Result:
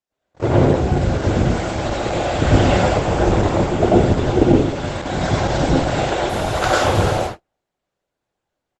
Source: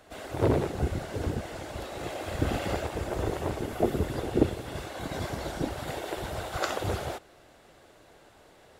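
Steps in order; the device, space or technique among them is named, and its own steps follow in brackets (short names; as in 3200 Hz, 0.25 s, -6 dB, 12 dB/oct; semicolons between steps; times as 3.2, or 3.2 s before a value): speakerphone in a meeting room (reverb RT60 0.55 s, pre-delay 88 ms, DRR -5 dB; speakerphone echo 0.33 s, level -21 dB; AGC gain up to 9.5 dB; gate -26 dBFS, range -41 dB; gain +1 dB; Opus 12 kbps 48000 Hz)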